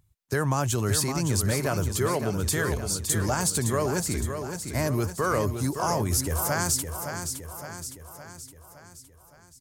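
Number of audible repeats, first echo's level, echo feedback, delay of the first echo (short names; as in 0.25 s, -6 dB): 6, -7.5 dB, 54%, 0.564 s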